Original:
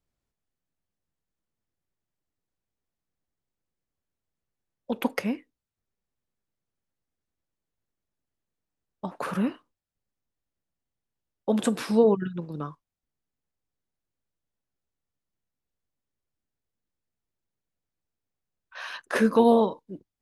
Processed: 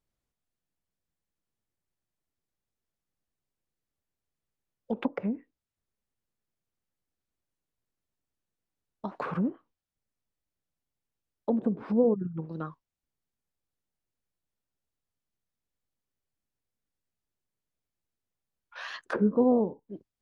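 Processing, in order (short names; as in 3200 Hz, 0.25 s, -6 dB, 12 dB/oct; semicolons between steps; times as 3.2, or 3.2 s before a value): treble ducked by the level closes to 480 Hz, closed at -23 dBFS; wow and flutter 130 cents; gain -2 dB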